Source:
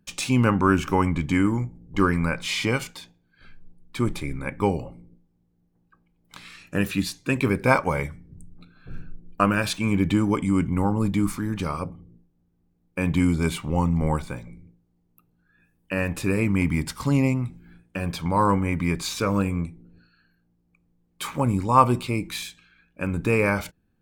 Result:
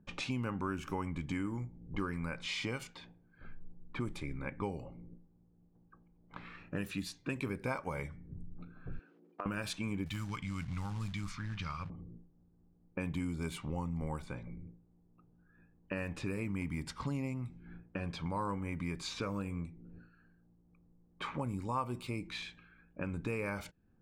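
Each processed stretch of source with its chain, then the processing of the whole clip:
0:08.99–0:09.46: one scale factor per block 7 bits + high-pass filter 300 Hz 24 dB per octave + downward compressor 2.5 to 1, threshold −38 dBFS
0:10.06–0:11.90: drawn EQ curve 130 Hz 0 dB, 350 Hz −17 dB, 550 Hz −15 dB, 1,300 Hz 0 dB, 5,800 Hz +7 dB, 9,100 Hz −4 dB + floating-point word with a short mantissa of 2 bits
whole clip: low-pass that shuts in the quiet parts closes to 1,100 Hz, open at −20 dBFS; downward compressor 3 to 1, threshold −41 dBFS; level +1 dB

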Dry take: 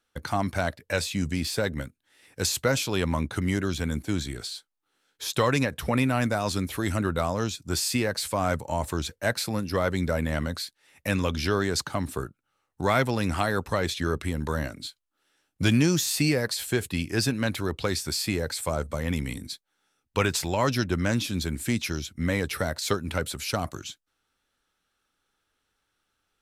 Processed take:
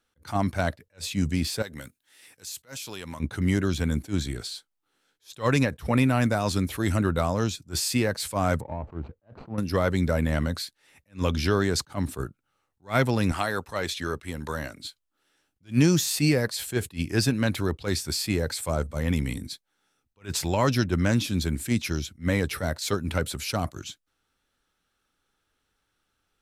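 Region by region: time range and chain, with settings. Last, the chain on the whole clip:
0:01.62–0:03.20: spectral tilt +2.5 dB per octave + downward compressor 4 to 1, threshold −36 dBFS
0:08.61–0:09.58: running median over 25 samples + low-pass filter 1,700 Hz + downward compressor 3 to 1, threshold −31 dBFS
0:13.32–0:14.84: high-pass filter 42 Hz + low-shelf EQ 380 Hz −10 dB
whole clip: low-shelf EQ 340 Hz +4 dB; level that may rise only so fast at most 300 dB per second

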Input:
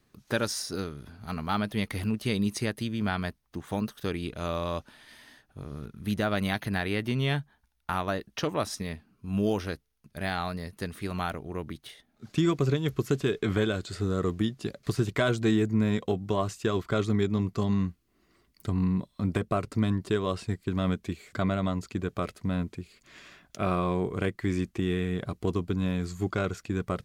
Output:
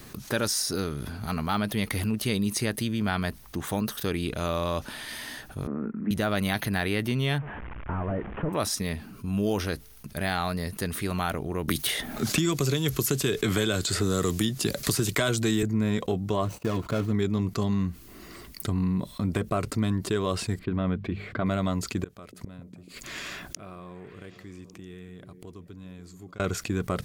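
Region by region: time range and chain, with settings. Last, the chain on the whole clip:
0:05.67–0:06.11: Butterworth low-pass 2,000 Hz + low shelf with overshoot 150 Hz −14 dB, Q 3
0:07.38–0:08.53: linear delta modulator 16 kbit/s, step −44 dBFS + low-pass filter 1,700 Hz
0:11.68–0:15.63: high-shelf EQ 3,700 Hz +11.5 dB + multiband upward and downward compressor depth 100%
0:16.45–0:17.12: running median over 25 samples + noise gate −58 dBFS, range −29 dB + notch comb filter 390 Hz
0:20.59–0:21.46: high-frequency loss of the air 410 metres + mains-hum notches 50/100/150/200 Hz
0:22.04–0:26.40: gate with flip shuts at −33 dBFS, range −34 dB + echo through a band-pass that steps 144 ms, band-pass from 150 Hz, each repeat 0.7 octaves, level −11 dB
whole clip: high-shelf EQ 8,400 Hz +9 dB; envelope flattener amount 50%; level −3 dB

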